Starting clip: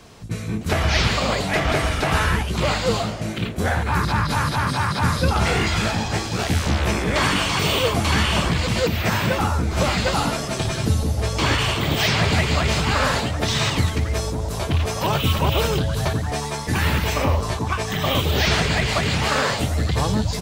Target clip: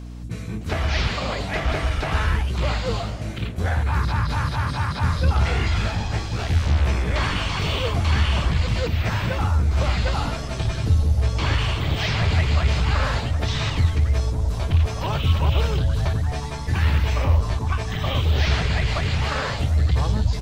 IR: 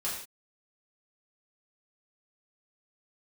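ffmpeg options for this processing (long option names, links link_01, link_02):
-filter_complex "[0:a]asubboost=boost=4.5:cutoff=97,aeval=exprs='val(0)+0.0355*(sin(2*PI*60*n/s)+sin(2*PI*2*60*n/s)/2+sin(2*PI*3*60*n/s)/3+sin(2*PI*4*60*n/s)/4+sin(2*PI*5*60*n/s)/5)':channel_layout=same,acrossover=split=5900[link_01][link_02];[link_02]acompressor=threshold=-46dB:ratio=4:attack=1:release=60[link_03];[link_01][link_03]amix=inputs=2:normalize=0,asplit=2[link_04][link_05];[link_05]aeval=exprs='clip(val(0),-1,0.237)':channel_layout=same,volume=-5.5dB[link_06];[link_04][link_06]amix=inputs=2:normalize=0,volume=-8.5dB"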